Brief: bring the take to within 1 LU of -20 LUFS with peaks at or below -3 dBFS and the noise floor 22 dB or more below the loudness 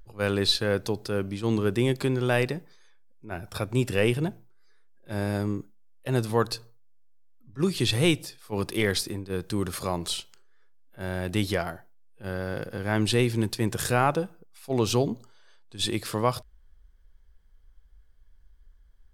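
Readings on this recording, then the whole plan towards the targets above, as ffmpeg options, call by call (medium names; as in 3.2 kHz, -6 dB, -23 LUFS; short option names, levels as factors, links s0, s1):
loudness -27.5 LUFS; peak level -8.0 dBFS; loudness target -20.0 LUFS
-> -af "volume=2.37,alimiter=limit=0.708:level=0:latency=1"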